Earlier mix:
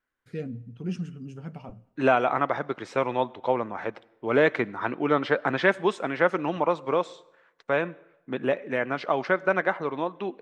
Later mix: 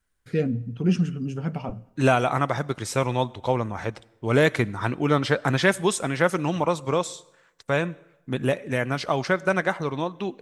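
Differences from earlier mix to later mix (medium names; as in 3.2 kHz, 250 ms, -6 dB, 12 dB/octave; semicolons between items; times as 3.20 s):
first voice +10.0 dB; second voice: remove band-pass 270–2500 Hz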